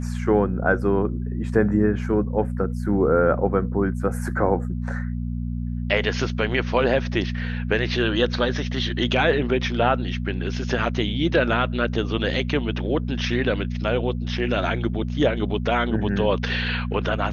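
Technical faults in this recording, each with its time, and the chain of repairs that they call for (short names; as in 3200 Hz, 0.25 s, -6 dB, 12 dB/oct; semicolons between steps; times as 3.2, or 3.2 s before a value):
hum 60 Hz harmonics 4 -27 dBFS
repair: de-hum 60 Hz, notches 4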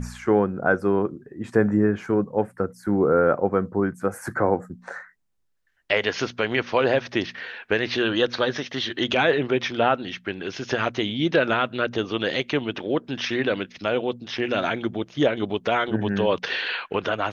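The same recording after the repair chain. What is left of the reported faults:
none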